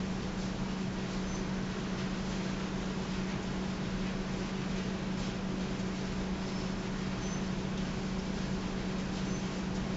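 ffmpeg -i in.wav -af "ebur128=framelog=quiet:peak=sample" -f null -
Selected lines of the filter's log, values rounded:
Integrated loudness:
  I:         -35.9 LUFS
  Threshold: -45.9 LUFS
Loudness range:
  LRA:         0.2 LU
  Threshold: -55.9 LUFS
  LRA low:   -36.0 LUFS
  LRA high:  -35.8 LUFS
Sample peak:
  Peak:      -23.2 dBFS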